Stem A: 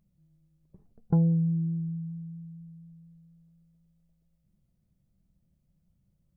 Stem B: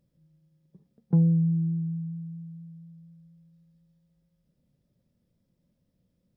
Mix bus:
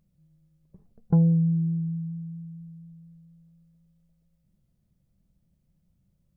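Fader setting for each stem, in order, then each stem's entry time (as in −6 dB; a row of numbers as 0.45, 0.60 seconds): +1.5, −12.0 decibels; 0.00, 0.00 seconds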